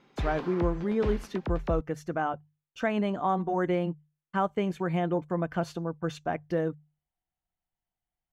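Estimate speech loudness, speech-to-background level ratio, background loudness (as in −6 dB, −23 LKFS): −30.5 LKFS, 6.5 dB, −37.0 LKFS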